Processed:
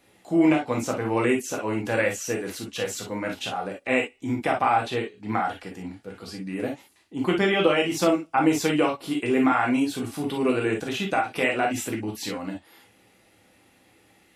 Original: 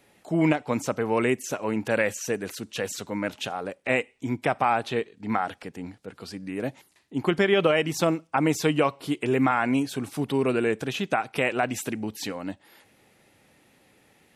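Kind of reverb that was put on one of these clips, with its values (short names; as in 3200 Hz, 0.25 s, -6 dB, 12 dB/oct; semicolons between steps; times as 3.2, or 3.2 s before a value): non-linear reverb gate 80 ms flat, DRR -0.5 dB; gain -2 dB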